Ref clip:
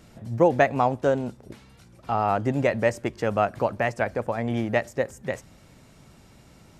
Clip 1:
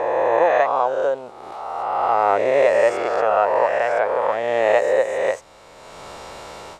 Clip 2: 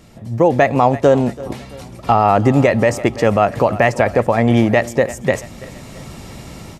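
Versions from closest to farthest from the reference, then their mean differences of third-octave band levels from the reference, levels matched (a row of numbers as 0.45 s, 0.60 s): 2, 1; 4.0 dB, 9.5 dB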